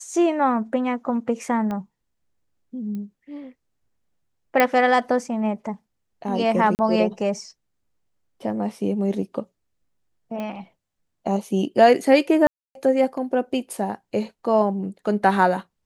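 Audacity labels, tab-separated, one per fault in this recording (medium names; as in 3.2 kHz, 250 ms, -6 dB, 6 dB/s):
1.710000	1.710000	pop -18 dBFS
2.950000	2.950000	pop -23 dBFS
4.600000	4.600000	pop -4 dBFS
6.750000	6.790000	dropout 39 ms
10.400000	10.400000	pop -19 dBFS
12.470000	12.750000	dropout 282 ms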